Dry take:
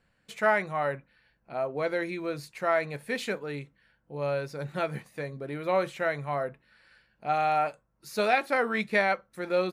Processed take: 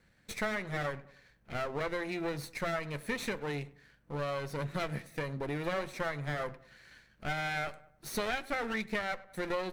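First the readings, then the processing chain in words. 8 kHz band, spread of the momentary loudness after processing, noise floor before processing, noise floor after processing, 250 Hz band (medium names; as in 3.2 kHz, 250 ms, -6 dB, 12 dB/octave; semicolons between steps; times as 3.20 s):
+1.5 dB, 8 LU, -72 dBFS, -67 dBFS, -3.0 dB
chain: comb filter that takes the minimum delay 0.51 ms; filtered feedback delay 100 ms, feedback 35%, low-pass 1.9 kHz, level -22 dB; compression 5:1, threshold -36 dBFS, peak gain reduction 13.5 dB; trim +4 dB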